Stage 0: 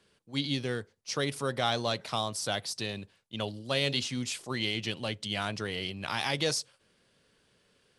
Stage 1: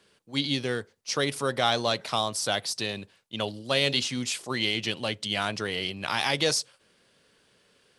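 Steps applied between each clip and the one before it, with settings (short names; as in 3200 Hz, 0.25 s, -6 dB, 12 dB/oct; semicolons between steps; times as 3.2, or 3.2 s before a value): low shelf 160 Hz -7.5 dB; gain +5 dB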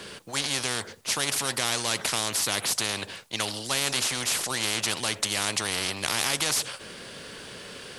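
spectral compressor 4:1; gain +2 dB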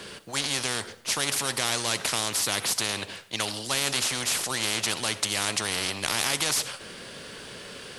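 reverb RT60 0.65 s, pre-delay 25 ms, DRR 15.5 dB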